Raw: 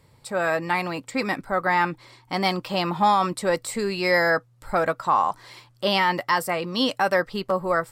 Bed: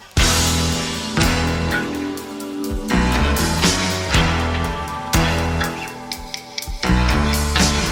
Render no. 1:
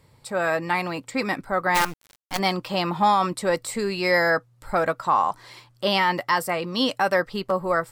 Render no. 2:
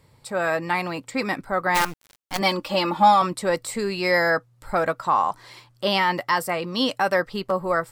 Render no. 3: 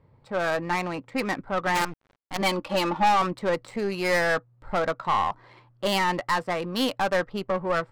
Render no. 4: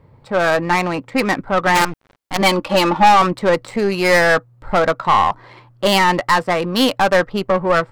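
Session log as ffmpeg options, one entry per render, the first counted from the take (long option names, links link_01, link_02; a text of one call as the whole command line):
ffmpeg -i in.wav -filter_complex "[0:a]asplit=3[link_01][link_02][link_03];[link_01]afade=type=out:start_time=1.74:duration=0.02[link_04];[link_02]acrusher=bits=4:dc=4:mix=0:aa=0.000001,afade=type=in:start_time=1.74:duration=0.02,afade=type=out:start_time=2.38:duration=0.02[link_05];[link_03]afade=type=in:start_time=2.38:duration=0.02[link_06];[link_04][link_05][link_06]amix=inputs=3:normalize=0" out.wav
ffmpeg -i in.wav -filter_complex "[0:a]asettb=1/sr,asplit=3[link_01][link_02][link_03];[link_01]atrim=end=2.414[link_04];[link_02]atrim=start=2.41:end=3.22,asetpts=PTS-STARTPTS,afade=type=in:duration=0.004:curve=qsin,afade=type=out:start_time=0.806:duration=0.004:curve=qsin,aecho=1:1:3.5:0.85,atrim=end_sample=35721[link_05];[link_03]atrim=start=3.216[link_06];[link_04][link_05]acrossfade=duration=0.004:curve1=hsin:curve2=qsin[link_07];[link_07][link_06]acrossfade=duration=0.004:curve1=qsin:curve2=hsin" out.wav
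ffmpeg -i in.wav -af "adynamicsmooth=sensitivity=3:basefreq=1500,aeval=exprs='(tanh(6.31*val(0)+0.35)-tanh(0.35))/6.31':channel_layout=same" out.wav
ffmpeg -i in.wav -af "volume=10dB" out.wav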